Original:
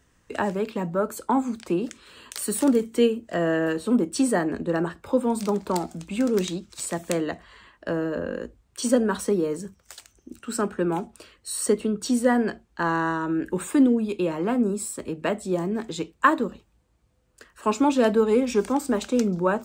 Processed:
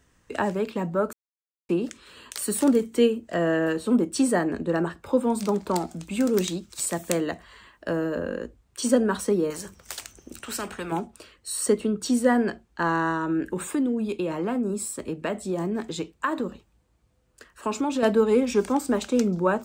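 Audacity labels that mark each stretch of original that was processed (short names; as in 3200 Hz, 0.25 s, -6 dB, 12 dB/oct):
1.130000	1.690000	mute
6.030000	8.350000	high shelf 9100 Hz +9 dB
9.500000	10.920000	spectral compressor 2:1
13.470000	18.030000	compressor 3:1, threshold -23 dBFS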